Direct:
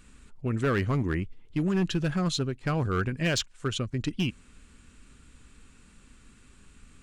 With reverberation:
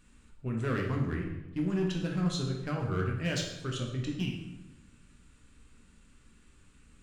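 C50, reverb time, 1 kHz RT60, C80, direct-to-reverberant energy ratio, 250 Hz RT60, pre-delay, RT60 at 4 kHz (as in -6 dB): 4.0 dB, 1.0 s, 1.0 s, 7.5 dB, 0.0 dB, 1.3 s, 10 ms, 0.75 s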